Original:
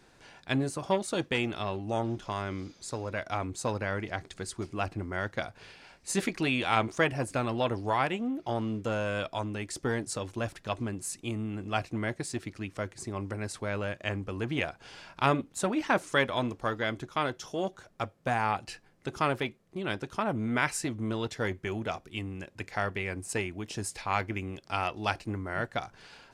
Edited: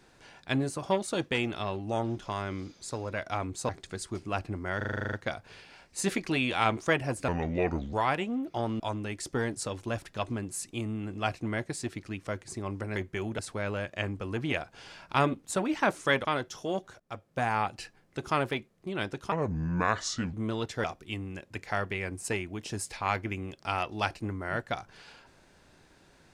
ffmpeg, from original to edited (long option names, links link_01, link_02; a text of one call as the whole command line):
ffmpeg -i in.wav -filter_complex "[0:a]asplit=21[link_01][link_02][link_03][link_04][link_05][link_06][link_07][link_08][link_09][link_10][link_11][link_12][link_13][link_14][link_15][link_16][link_17][link_18][link_19][link_20][link_21];[link_01]atrim=end=3.692[link_22];[link_02]atrim=start=4.158:end=5.282[link_23];[link_03]atrim=start=5.238:end=5.282[link_24];[link_04]atrim=start=5.238:end=5.282[link_25];[link_05]atrim=start=5.238:end=5.282[link_26];[link_06]atrim=start=5.238:end=5.282[link_27];[link_07]atrim=start=5.238:end=5.282[link_28];[link_08]atrim=start=5.238:end=5.282[link_29];[link_09]atrim=start=5.238:end=5.282[link_30];[link_10]atrim=start=5.238:end=5.282[link_31];[link_11]atrim=start=5.238:end=7.394[link_32];[link_12]atrim=start=7.39:end=7.85,asetpts=PTS-STARTPTS,asetrate=31311,aresample=44100[link_33];[link_13]atrim=start=7.846:end=8.722[link_34];[link_14]atrim=start=9.298:end=13.462[link_35];[link_15]atrim=start=21.458:end=21.892[link_36];[link_16]atrim=start=13.458:end=16.322[link_37];[link_17]atrim=start=17.138:end=17.89,asetpts=PTS-STARTPTS,afade=type=out:start_time=0.748:duration=0.004:curve=hsin:silence=0.141254[link_38];[link_18]atrim=start=17.89:end=20.214,asetpts=PTS-STARTPTS,afade=type=in:duration=0.56:curve=qsin:silence=0.141254[link_39];[link_19]atrim=start=20.21:end=20.95,asetpts=PTS-STARTPTS,asetrate=32193,aresample=44100,atrim=end_sample=44704,asetpts=PTS-STARTPTS[link_40];[link_20]atrim=start=20.946:end=21.462[link_41];[link_21]atrim=start=21.888[link_42];[link_22][link_23]acrossfade=duration=0.004:curve1=hsin:curve2=hsin[link_43];[link_43][link_24]acrossfade=duration=0.004:curve1=hsin:curve2=hsin[link_44];[link_44][link_25]acrossfade=duration=0.004:curve1=hsin:curve2=hsin[link_45];[link_45][link_26]acrossfade=duration=0.004:curve1=hsin:curve2=hsin[link_46];[link_46][link_27]acrossfade=duration=0.004:curve1=hsin:curve2=hsin[link_47];[link_47][link_28]acrossfade=duration=0.004:curve1=hsin:curve2=hsin[link_48];[link_48][link_29]acrossfade=duration=0.004:curve1=hsin:curve2=hsin[link_49];[link_49][link_30]acrossfade=duration=0.004:curve1=hsin:curve2=hsin[link_50];[link_50][link_31]acrossfade=duration=0.004:curve1=hsin:curve2=hsin[link_51];[link_51][link_32]acrossfade=duration=0.004:curve1=hsin:curve2=hsin[link_52];[link_52][link_33]acrossfade=duration=0.004:curve1=hsin:curve2=hsin[link_53];[link_53][link_34]acrossfade=duration=0.004:curve1=hsin:curve2=hsin[link_54];[link_54][link_35]acrossfade=duration=0.004:curve1=hsin:curve2=hsin[link_55];[link_55][link_36]acrossfade=duration=0.004:curve1=hsin:curve2=hsin[link_56];[link_56][link_37]acrossfade=duration=0.004:curve1=hsin:curve2=hsin[link_57];[link_38][link_39]concat=n=2:v=0:a=1[link_58];[link_57][link_58]acrossfade=duration=0.004:curve1=hsin:curve2=hsin[link_59];[link_59][link_40]acrossfade=duration=0.004:curve1=hsin:curve2=hsin[link_60];[link_60][link_41]acrossfade=duration=0.004:curve1=hsin:curve2=hsin[link_61];[link_61][link_42]acrossfade=duration=0.004:curve1=hsin:curve2=hsin" out.wav